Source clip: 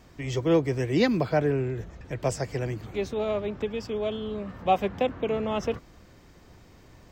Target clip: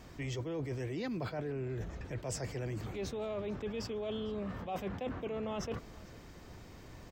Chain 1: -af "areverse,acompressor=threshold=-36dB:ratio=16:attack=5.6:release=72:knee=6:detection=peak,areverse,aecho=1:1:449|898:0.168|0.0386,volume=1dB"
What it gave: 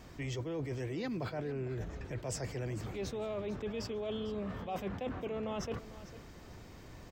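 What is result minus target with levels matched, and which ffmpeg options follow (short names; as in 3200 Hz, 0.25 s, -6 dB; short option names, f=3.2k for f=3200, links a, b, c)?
echo-to-direct +7 dB
-af "areverse,acompressor=threshold=-36dB:ratio=16:attack=5.6:release=72:knee=6:detection=peak,areverse,aecho=1:1:449|898:0.075|0.0172,volume=1dB"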